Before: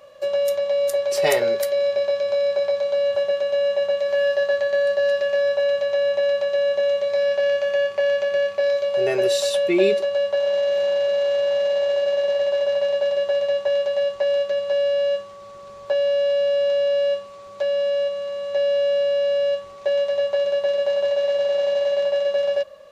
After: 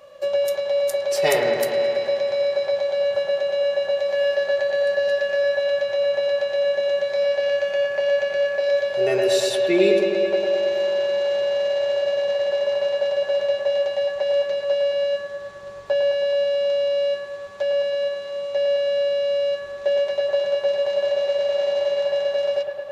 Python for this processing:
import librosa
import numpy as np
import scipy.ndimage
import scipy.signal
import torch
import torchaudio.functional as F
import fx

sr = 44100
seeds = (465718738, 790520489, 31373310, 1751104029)

y = fx.echo_wet_lowpass(x, sr, ms=107, feedback_pct=76, hz=2600.0, wet_db=-5)